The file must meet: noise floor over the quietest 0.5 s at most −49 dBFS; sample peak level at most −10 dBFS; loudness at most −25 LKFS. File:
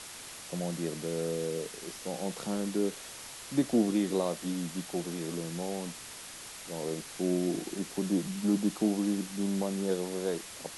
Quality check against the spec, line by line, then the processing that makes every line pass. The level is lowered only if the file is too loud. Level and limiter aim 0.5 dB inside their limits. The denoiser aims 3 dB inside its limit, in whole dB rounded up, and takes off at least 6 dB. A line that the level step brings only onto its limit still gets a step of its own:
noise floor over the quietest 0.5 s −46 dBFS: out of spec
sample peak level −15.0 dBFS: in spec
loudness −33.0 LKFS: in spec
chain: broadband denoise 6 dB, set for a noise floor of −46 dBFS

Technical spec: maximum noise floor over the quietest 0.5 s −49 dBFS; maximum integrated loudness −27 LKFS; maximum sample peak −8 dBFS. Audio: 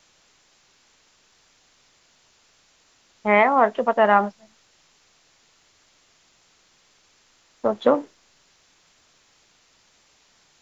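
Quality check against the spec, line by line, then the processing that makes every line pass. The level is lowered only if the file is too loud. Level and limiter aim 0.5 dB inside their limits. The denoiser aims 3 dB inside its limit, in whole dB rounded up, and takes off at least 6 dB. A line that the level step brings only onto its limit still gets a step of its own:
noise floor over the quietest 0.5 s −61 dBFS: in spec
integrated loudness −20.0 LKFS: out of spec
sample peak −4.5 dBFS: out of spec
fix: level −7.5 dB

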